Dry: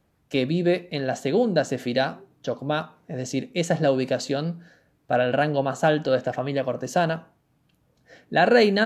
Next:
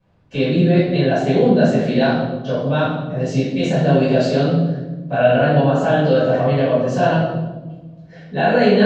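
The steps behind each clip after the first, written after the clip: LPF 4200 Hz 12 dB/oct; limiter -14.5 dBFS, peak gain reduction 7.5 dB; reverb RT60 1.2 s, pre-delay 5 ms, DRR -13 dB; gain -9 dB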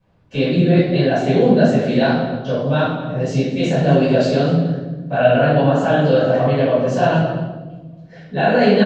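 flange 1.7 Hz, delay 0.7 ms, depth 9.8 ms, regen -55%; outdoor echo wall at 41 m, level -14 dB; gain +4.5 dB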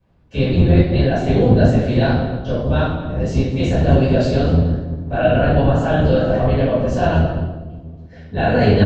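octaver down 1 oct, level +3 dB; gain -2.5 dB

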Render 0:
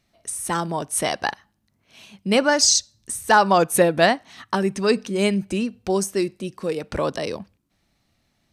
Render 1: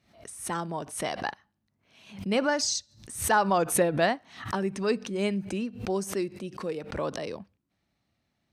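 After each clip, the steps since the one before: HPF 56 Hz; high shelf 5400 Hz -9 dB; backwards sustainer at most 110 dB/s; gain -7.5 dB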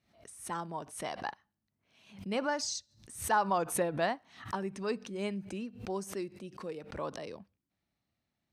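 dynamic EQ 970 Hz, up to +5 dB, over -40 dBFS, Q 2; gain -8 dB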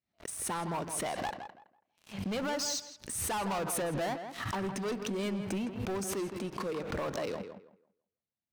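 sample leveller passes 5; compressor, threshold -27 dBFS, peak gain reduction 7.5 dB; tape echo 0.163 s, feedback 25%, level -7 dB, low-pass 2400 Hz; gain -6 dB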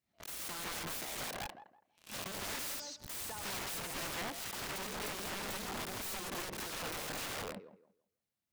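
wrapped overs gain 39 dB; gain +3 dB

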